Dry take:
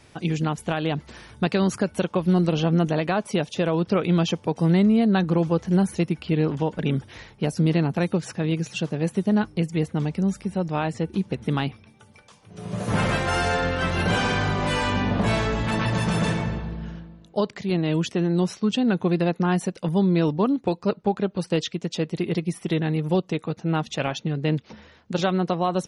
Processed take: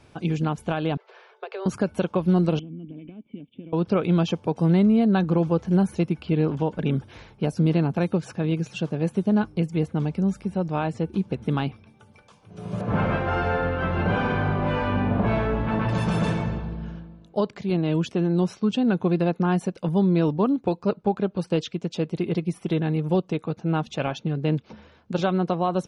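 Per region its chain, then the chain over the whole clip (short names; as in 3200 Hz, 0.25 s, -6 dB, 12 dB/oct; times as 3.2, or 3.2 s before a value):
0.97–1.66 Chebyshev high-pass 380 Hz, order 8 + compressor, threshold -28 dBFS + air absorption 190 m
2.59–3.73 G.711 law mismatch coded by A + compressor, threshold -24 dBFS + vocal tract filter i
12.81–15.89 LPF 2300 Hz + doubler 32 ms -11.5 dB
whole clip: high shelf 3400 Hz -9 dB; notch 1900 Hz, Q 7.9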